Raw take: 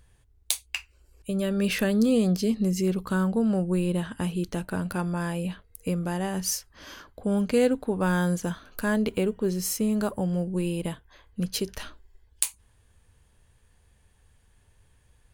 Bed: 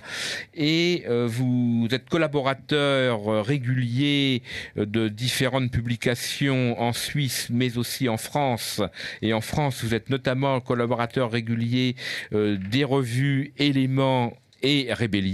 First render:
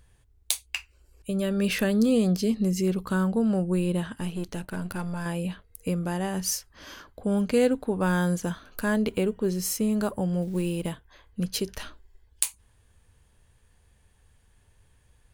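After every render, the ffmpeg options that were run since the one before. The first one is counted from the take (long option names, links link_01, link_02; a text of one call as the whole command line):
ffmpeg -i in.wav -filter_complex "[0:a]asettb=1/sr,asplit=3[link_01][link_02][link_03];[link_01]atrim=end=4.154[link_04];[link_02]atrim=start=4.15:end=5.26,asetpts=PTS-STARTPTS,afade=type=in:duration=0.004:curve=qsin,afade=type=out:start_time=1.106:duration=0.004:curve=qsin,aeval=exprs='if(lt(val(0),0),0.447*val(0),val(0))':channel_layout=same[link_05];[link_03]atrim=start=5.256[link_06];[link_04][link_05]acrossfade=duration=0.004:curve1=hsin:curve2=qsin[link_07];[link_07][link_06]acrossfade=duration=0.004:curve1=qsin:curve2=hsin,asplit=3[link_08][link_09][link_10];[link_08]afade=type=out:start_time=10.41:duration=0.02[link_11];[link_09]acrusher=bits=7:mode=log:mix=0:aa=0.000001,afade=type=in:start_time=10.41:duration=0.02,afade=type=out:start_time=10.9:duration=0.02[link_12];[link_10]afade=type=in:start_time=10.9:duration=0.02[link_13];[link_11][link_12][link_13]amix=inputs=3:normalize=0" out.wav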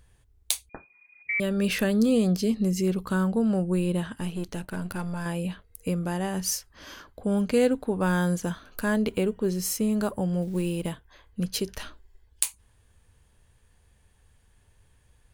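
ffmpeg -i in.wav -filter_complex "[0:a]asettb=1/sr,asplit=3[link_01][link_02][link_03];[link_01]atrim=end=0.694[link_04];[link_02]atrim=start=0.69:end=1.4,asetpts=PTS-STARTPTS,afade=type=in:duration=0.004:curve=qsin,afade=type=out:start_time=0.706:duration=0.004:curve=qsin,lowpass=frequency=2100:width_type=q:width=0.5098,lowpass=frequency=2100:width_type=q:width=0.6013,lowpass=frequency=2100:width_type=q:width=0.9,lowpass=frequency=2100:width_type=q:width=2.563,afreqshift=-2500[link_05];[link_03]atrim=start=1.396[link_06];[link_04][link_05]acrossfade=duration=0.004:curve1=hsin:curve2=qsin[link_07];[link_07][link_06]acrossfade=duration=0.004:curve1=qsin:curve2=hsin" out.wav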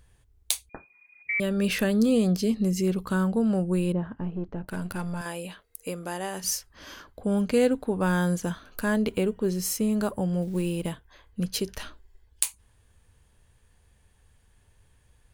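ffmpeg -i in.wav -filter_complex "[0:a]asettb=1/sr,asplit=3[link_01][link_02][link_03];[link_01]atrim=end=3.924[link_04];[link_02]atrim=start=3.92:end=4.68,asetpts=PTS-STARTPTS,afade=type=in:duration=0.004:curve=qsin,afade=type=out:start_time=0.756:duration=0.004:curve=qsin,lowpass=1100[link_05];[link_03]atrim=start=4.676[link_06];[link_04][link_05]acrossfade=duration=0.004:curve1=hsin:curve2=qsin[link_07];[link_07][link_06]acrossfade=duration=0.004:curve1=qsin:curve2=hsin,asettb=1/sr,asplit=3[link_08][link_09][link_10];[link_08]atrim=end=5.214[link_11];[link_09]atrim=start=5.21:end=6.44,asetpts=PTS-STARTPTS,afade=type=in:duration=0.004:curve=qsin,afade=type=out:start_time=1.226:duration=0.004:curve=qsin,bass=frequency=250:gain=-14,treble=frequency=4000:gain=3[link_12];[link_10]atrim=start=6.436[link_13];[link_11][link_12]acrossfade=duration=0.004:curve1=hsin:curve2=qsin[link_14];[link_14][link_13]acrossfade=duration=0.004:curve1=qsin:curve2=hsin" out.wav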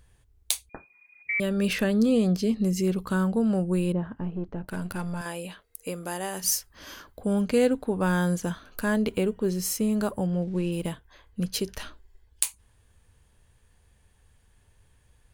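ffmpeg -i in.wav -filter_complex "[0:a]asettb=1/sr,asplit=3[link_01][link_02][link_03];[link_01]atrim=end=1.734[link_04];[link_02]atrim=start=1.73:end=2.6,asetpts=PTS-STARTPTS,afade=type=in:duration=0.004:curve=qsin,afade=type=out:start_time=0.866:duration=0.004:curve=qsin,highshelf=frequency=7100:gain=-7[link_05];[link_03]atrim=start=2.596[link_06];[link_04][link_05]acrossfade=duration=0.004:curve1=hsin:curve2=qsin[link_07];[link_07][link_06]acrossfade=duration=0.004:curve1=qsin:curve2=hsin,asettb=1/sr,asplit=3[link_08][link_09][link_10];[link_08]atrim=end=5.944[link_11];[link_09]atrim=start=5.94:end=7.33,asetpts=PTS-STARTPTS,afade=type=in:duration=0.004:curve=qsin,afade=type=out:start_time=1.386:duration=0.004:curve=qsin,highshelf=frequency=9700:gain=9[link_12];[link_10]atrim=start=7.326[link_13];[link_11][link_12]acrossfade=duration=0.004:curve1=hsin:curve2=qsin[link_14];[link_14][link_13]acrossfade=duration=0.004:curve1=qsin:curve2=hsin,asplit=3[link_15][link_16][link_17];[link_15]afade=type=out:start_time=10.26:duration=0.02[link_18];[link_16]adynamicsmooth=sensitivity=7:basefreq=4200,afade=type=in:start_time=10.26:duration=0.02,afade=type=out:start_time=10.71:duration=0.02[link_19];[link_17]afade=type=in:start_time=10.71:duration=0.02[link_20];[link_18][link_19][link_20]amix=inputs=3:normalize=0" out.wav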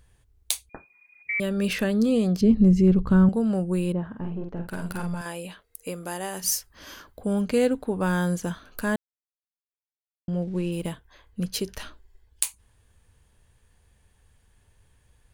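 ffmpeg -i in.wav -filter_complex "[0:a]asettb=1/sr,asplit=3[link_01][link_02][link_03];[link_01]atrim=end=2.414[link_04];[link_02]atrim=start=2.41:end=3.29,asetpts=PTS-STARTPTS,afade=type=in:duration=0.004:curve=qsin,afade=type=out:start_time=0.876:duration=0.004:curve=qsin,aemphasis=mode=reproduction:type=riaa[link_05];[link_03]atrim=start=3.286[link_06];[link_04][link_05]acrossfade=duration=0.004:curve1=hsin:curve2=qsin[link_07];[link_07][link_06]acrossfade=duration=0.004:curve1=qsin:curve2=hsin,asettb=1/sr,asplit=3[link_08][link_09][link_10];[link_08]atrim=end=4.094[link_11];[link_09]atrim=start=4.09:end=5.15,asetpts=PTS-STARTPTS,afade=type=in:duration=0.004:curve=qsin,afade=type=out:start_time=1.056:duration=0.004:curve=qsin,asplit=2[link_12][link_13];[link_13]adelay=47,volume=-4.5dB[link_14];[link_12][link_14]amix=inputs=2:normalize=0,atrim=end_sample=46746[link_15];[link_10]atrim=start=5.146[link_16];[link_11][link_15]acrossfade=duration=0.004:curve1=hsin:curve2=qsin[link_17];[link_17][link_16]acrossfade=duration=0.004:curve1=qsin:curve2=hsin,asplit=3[link_18][link_19][link_20];[link_18]atrim=end=8.96,asetpts=PTS-STARTPTS,afade=type=out:start_time=8.956:duration=0.004:curve=hsin[link_21];[link_19]atrim=start=8.96:end=10.28,asetpts=PTS-STARTPTS,volume=0[link_22];[link_20]atrim=start=10.28,asetpts=PTS-STARTPTS,afade=type=in:duration=0.004:curve=hsin[link_23];[link_21][link_22][link_23]concat=n=3:v=0:a=1" out.wav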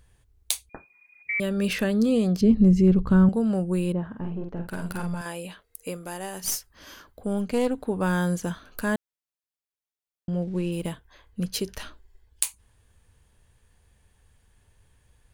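ffmpeg -i in.wav -filter_complex "[0:a]asettb=1/sr,asplit=3[link_01][link_02][link_03];[link_01]atrim=end=5.974[link_04];[link_02]atrim=start=5.97:end=7.78,asetpts=PTS-STARTPTS,afade=type=in:duration=0.004:curve=qsin,afade=type=out:start_time=1.806:duration=0.004:curve=qsin,aeval=exprs='(tanh(6.31*val(0)+0.55)-tanh(0.55))/6.31':channel_layout=same[link_05];[link_03]atrim=start=7.776[link_06];[link_04][link_05]acrossfade=duration=0.004:curve1=hsin:curve2=qsin[link_07];[link_07][link_06]acrossfade=duration=0.004:curve1=qsin:curve2=hsin" out.wav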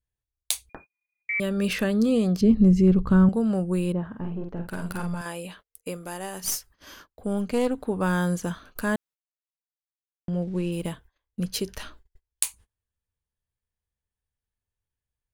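ffmpeg -i in.wav -af "adynamicequalizer=threshold=0.00355:dfrequency=1200:dqfactor=5.4:tfrequency=1200:tqfactor=5.4:attack=5:release=100:ratio=0.375:range=1.5:mode=boostabove:tftype=bell,agate=range=-28dB:threshold=-48dB:ratio=16:detection=peak" out.wav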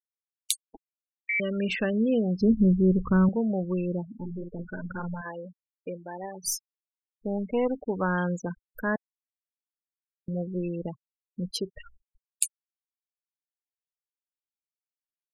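ffmpeg -i in.wav -af "afftfilt=real='re*gte(hypot(re,im),0.0447)':imag='im*gte(hypot(re,im),0.0447)':win_size=1024:overlap=0.75,lowshelf=frequency=210:gain=-7" out.wav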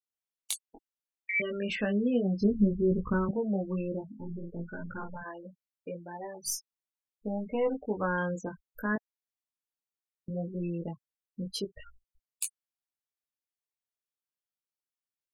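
ffmpeg -i in.wav -filter_complex "[0:a]acrossover=split=2400[link_01][link_02];[link_02]asoftclip=type=tanh:threshold=-16dB[link_03];[link_01][link_03]amix=inputs=2:normalize=0,flanger=delay=18:depth=2.7:speed=0.66" out.wav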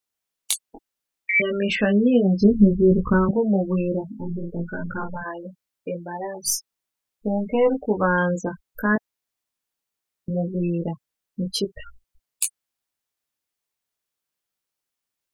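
ffmpeg -i in.wav -af "volume=10dB" out.wav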